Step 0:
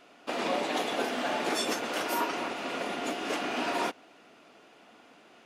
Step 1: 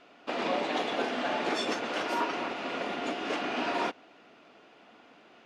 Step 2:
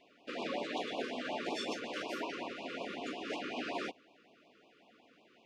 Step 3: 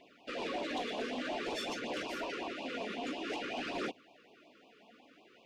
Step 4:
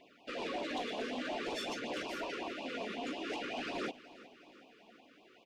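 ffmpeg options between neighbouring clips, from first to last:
-af "lowpass=4.8k"
-af "afftfilt=real='re*(1-between(b*sr/1024,740*pow(1700/740,0.5+0.5*sin(2*PI*5.4*pts/sr))/1.41,740*pow(1700/740,0.5+0.5*sin(2*PI*5.4*pts/sr))*1.41))':imag='im*(1-between(b*sr/1024,740*pow(1700/740,0.5+0.5*sin(2*PI*5.4*pts/sr))/1.41,740*pow(1700/740,0.5+0.5*sin(2*PI*5.4*pts/sr))*1.41))':win_size=1024:overlap=0.75,volume=-6.5dB"
-af "asoftclip=type=tanh:threshold=-34.5dB,aphaser=in_gain=1:out_gain=1:delay=4.8:decay=0.34:speed=0.52:type=triangular,volume=2.5dB"
-af "aecho=1:1:369|738|1107|1476|1845:0.126|0.0692|0.0381|0.0209|0.0115,volume=-1dB"

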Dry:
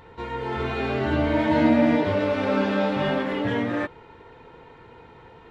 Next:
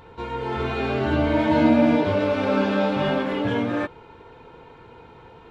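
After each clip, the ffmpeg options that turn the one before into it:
-af "bandreject=f=1.9k:w=7.8,volume=1.5dB"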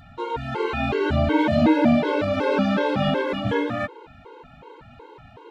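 -af "afftfilt=real='re*gt(sin(2*PI*2.7*pts/sr)*(1-2*mod(floor(b*sr/1024/280),2)),0)':imag='im*gt(sin(2*PI*2.7*pts/sr)*(1-2*mod(floor(b*sr/1024/280),2)),0)':win_size=1024:overlap=0.75,volume=4dB"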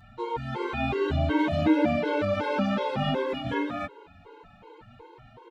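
-filter_complex "[0:a]asplit=2[a][b];[b]adelay=6.3,afreqshift=0.41[c];[a][c]amix=inputs=2:normalize=1,volume=-2dB"

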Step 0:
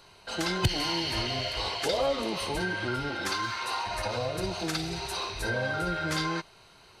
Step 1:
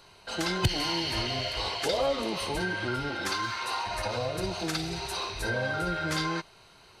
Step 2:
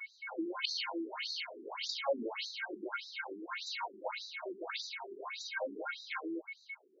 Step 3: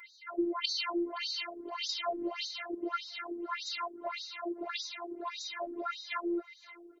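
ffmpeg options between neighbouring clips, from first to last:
-af anull
-af "aeval=exprs='val(0)+0.0141*sin(2*PI*2200*n/s)':c=same,afftfilt=real='re*between(b*sr/1024,290*pow(5300/290,0.5+0.5*sin(2*PI*1.7*pts/sr))/1.41,290*pow(5300/290,0.5+0.5*sin(2*PI*1.7*pts/sr))*1.41)':imag='im*between(b*sr/1024,290*pow(5300/290,0.5+0.5*sin(2*PI*1.7*pts/sr))/1.41,290*pow(5300/290,0.5+0.5*sin(2*PI*1.7*pts/sr))*1.41)':win_size=1024:overlap=0.75,volume=-2.5dB"
-af "aecho=1:1:520|1040:0.0841|0.0135,afftfilt=real='hypot(re,im)*cos(PI*b)':imag='0':win_size=512:overlap=0.75,volume=7dB"

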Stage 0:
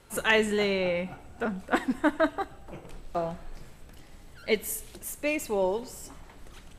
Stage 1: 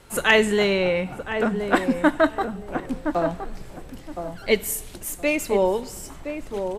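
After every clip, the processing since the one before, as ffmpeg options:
-filter_complex "[0:a]asplit=2[a][b];[b]adelay=1018,lowpass=f=980:p=1,volume=-6.5dB,asplit=2[c][d];[d]adelay=1018,lowpass=f=980:p=1,volume=0.24,asplit=2[e][f];[f]adelay=1018,lowpass=f=980:p=1,volume=0.24[g];[a][c][e][g]amix=inputs=4:normalize=0,volume=6dB"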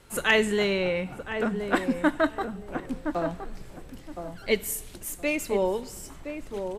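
-af "equalizer=f=750:w=1.5:g=-2.5,volume=-4dB"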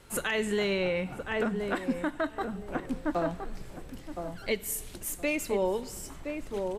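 -af "alimiter=limit=-19dB:level=0:latency=1:release=300"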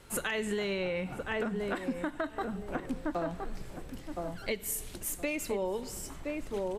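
-af "acompressor=threshold=-29dB:ratio=6"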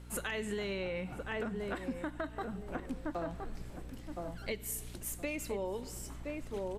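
-af "aeval=exprs='val(0)+0.00631*(sin(2*PI*60*n/s)+sin(2*PI*2*60*n/s)/2+sin(2*PI*3*60*n/s)/3+sin(2*PI*4*60*n/s)/4+sin(2*PI*5*60*n/s)/5)':c=same,volume=-4.5dB"

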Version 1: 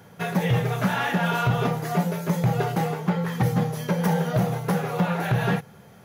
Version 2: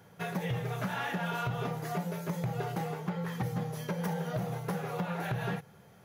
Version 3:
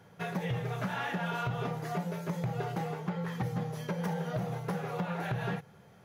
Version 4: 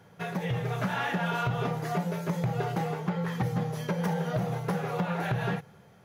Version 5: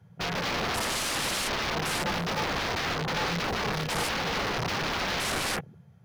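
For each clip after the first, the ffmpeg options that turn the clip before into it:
-af "equalizer=f=230:w=4.7:g=-4,acompressor=threshold=-22dB:ratio=6,volume=-7.5dB"
-af "highshelf=f=9.6k:g=-9.5"
-af "dynaudnorm=f=120:g=9:m=3dB,volume=1.5dB"
-af "aeval=exprs='(mod(31.6*val(0)+1,2)-1)/31.6':c=same,afwtdn=0.00631,volume=6dB"

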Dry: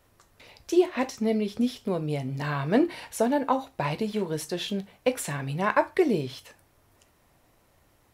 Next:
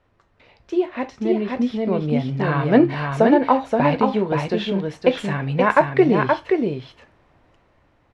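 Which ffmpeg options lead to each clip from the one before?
-af "lowpass=2.8k,aecho=1:1:525:0.631,dynaudnorm=f=320:g=11:m=11.5dB"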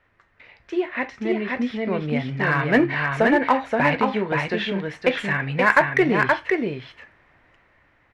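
-filter_complex "[0:a]equalizer=f=1.9k:t=o:w=1.1:g=13.5,asplit=2[a][b];[b]volume=11dB,asoftclip=hard,volume=-11dB,volume=-6dB[c];[a][c]amix=inputs=2:normalize=0,volume=-7.5dB"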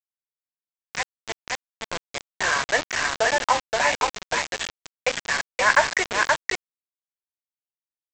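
-af "highpass=f=540:w=0.5412,highpass=f=540:w=1.3066,aresample=16000,acrusher=bits=3:mix=0:aa=0.000001,aresample=44100,volume=-1dB"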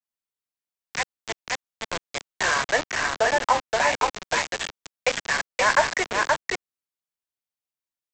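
-filter_complex "[0:a]acrossover=split=300|1200|2400[a][b][c][d];[c]alimiter=limit=-19.5dB:level=0:latency=1[e];[a][b][e][d]amix=inputs=4:normalize=0,adynamicequalizer=threshold=0.02:dfrequency=1900:dqfactor=0.7:tfrequency=1900:tqfactor=0.7:attack=5:release=100:ratio=0.375:range=2.5:mode=cutabove:tftype=highshelf,volume=1dB"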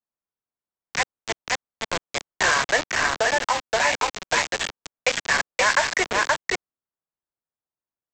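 -filter_complex "[0:a]acrossover=split=1600[a][b];[a]alimiter=limit=-18dB:level=0:latency=1:release=278[c];[b]aeval=exprs='sgn(val(0))*max(abs(val(0))-0.00141,0)':c=same[d];[c][d]amix=inputs=2:normalize=0,volume=3.5dB"

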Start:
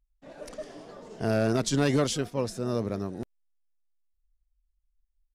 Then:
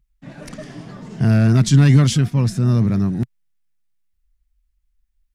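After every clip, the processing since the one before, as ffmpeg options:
-filter_complex "[0:a]equalizer=f=160:w=0.72:g=10.5,asplit=2[a][b];[b]alimiter=limit=-18.5dB:level=0:latency=1:release=15,volume=1dB[c];[a][c]amix=inputs=2:normalize=0,equalizer=f=125:t=o:w=1:g=7,equalizer=f=500:t=o:w=1:g=-10,equalizer=f=2k:t=o:w=1:g=5"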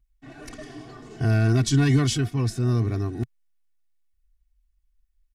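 -af "aecho=1:1:2.7:0.97,volume=-6.5dB"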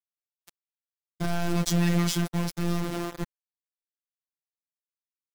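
-af "aeval=exprs='val(0)*gte(abs(val(0)),0.0447)':c=same,aeval=exprs='(tanh(8.91*val(0)+0.4)-tanh(0.4))/8.91':c=same,afftfilt=real='hypot(re,im)*cos(PI*b)':imag='0':win_size=1024:overlap=0.75,volume=4dB"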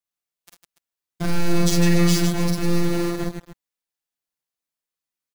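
-af "aecho=1:1:46|50|56|73|154|288:0.531|0.562|0.398|0.266|0.501|0.188,volume=3.5dB"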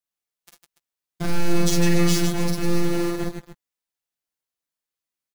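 -filter_complex "[0:a]asplit=2[a][b];[b]adelay=14,volume=-11.5dB[c];[a][c]amix=inputs=2:normalize=0,volume=-1dB"

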